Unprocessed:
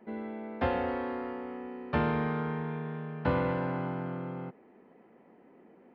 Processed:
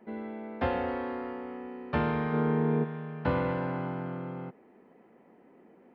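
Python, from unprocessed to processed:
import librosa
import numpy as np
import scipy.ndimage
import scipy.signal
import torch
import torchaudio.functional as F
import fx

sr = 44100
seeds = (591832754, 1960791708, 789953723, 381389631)

y = fx.peak_eq(x, sr, hz=320.0, db=fx.line((2.32, 6.5), (2.83, 14.5)), octaves=2.4, at=(2.32, 2.83), fade=0.02)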